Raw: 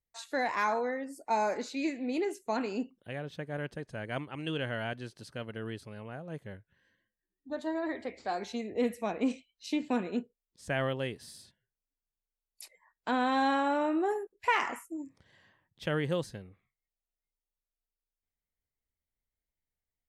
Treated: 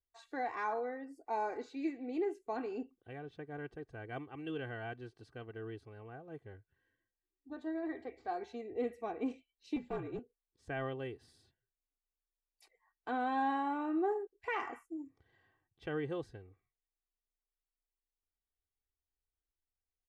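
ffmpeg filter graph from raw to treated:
ffmpeg -i in.wav -filter_complex "[0:a]asettb=1/sr,asplit=3[link_01][link_02][link_03];[link_01]atrim=end=9.764[link_04];[link_02]atrim=start=9.76:end=10.19,asetpts=PTS-STARTPTS,afade=type=in:duration=0.004:curve=qsin,afade=type=out:start_time=0.426:duration=0.004:curve=qsin,afreqshift=-57,aeval=exprs='clip(val(0),-1,0.0447)':channel_layout=same[link_05];[link_03]atrim=start=10.186[link_06];[link_04][link_05]acrossfade=duration=0.004:curve1=hsin:curve2=qsin[link_07];[link_07][link_06]acrossfade=duration=0.004:curve1=qsin:curve2=hsin,lowpass=frequency=1300:poles=1,aecho=1:1:2.6:0.7,volume=-6.5dB" out.wav

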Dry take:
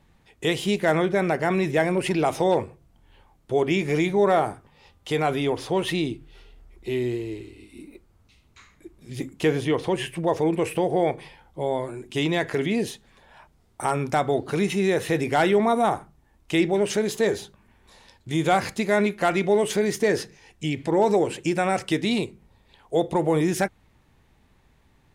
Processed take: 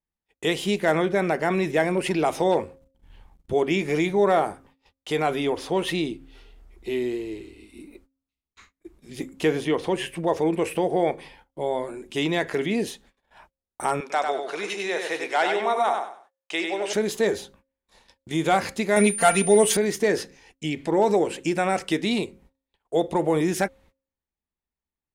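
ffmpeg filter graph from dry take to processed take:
ffmpeg -i in.wav -filter_complex "[0:a]asettb=1/sr,asplit=3[link_01][link_02][link_03];[link_01]atrim=end=2.634[link_04];[link_02]atrim=start=2.63:end=3.53,asetpts=PTS-STARTPTS,afade=type=in:duration=0.004:curve=qsin,afade=type=out:start_time=0.896:duration=0.004:curve=qsin,asubboost=boost=12:cutoff=220,aeval=exprs='sgn(val(0))*max(abs(val(0))-0.00126,0)':channel_layout=same[link_05];[link_03]atrim=start=3.526[link_06];[link_04][link_05]acrossfade=duration=0.004:curve1=hsin:curve2=qsin[link_07];[link_07][link_06]acrossfade=duration=0.004:curve1=qsin:curve2=hsin,asettb=1/sr,asplit=3[link_08][link_09][link_10];[link_08]atrim=end=14.004[link_11];[link_09]atrim=start=14:end=16.93,asetpts=PTS-STARTPTS,afade=type=in:duration=0.004:curve=qsin,afade=type=out:start_time=2.926:duration=0.004:curve=qsin,highpass=590,lowpass=7700,aecho=1:1:97|194|291|388:0.562|0.157|0.0441|0.0123,atrim=end_sample=129213[link_12];[link_10]atrim=start=16.926[link_13];[link_11][link_12]acrossfade=duration=0.004:curve1=hsin:curve2=qsin[link_14];[link_14][link_13]acrossfade=duration=0.004:curve1=qsin:curve2=hsin,asettb=1/sr,asplit=3[link_15][link_16][link_17];[link_15]atrim=end=18.964[link_18];[link_16]atrim=start=18.96:end=19.77,asetpts=PTS-STARTPTS,afade=type=in:duration=0.004:curve=qsin,afade=type=out:start_time=0.806:duration=0.004:curve=qsin,aemphasis=mode=production:type=cd,aecho=1:1:4.4:0.87,atrim=end_sample=35721,aeval=exprs='val(0)+0.0398*sin(2*PI*9200*n/s)':channel_layout=same[link_19];[link_17]atrim=start=19.766[link_20];[link_18][link_19]acrossfade=duration=0.004:curve1=hsin:curve2=qsin[link_21];[link_21][link_20]acrossfade=duration=0.004:curve1=qsin:curve2=hsin,agate=range=-32dB:threshold=-51dB:ratio=16:detection=peak,equalizer=frequency=120:width_type=o:width=0.38:gain=-14.5,bandreject=frequency=268.4:width_type=h:width=4,bandreject=frequency=536.8:width_type=h:width=4" out.wav

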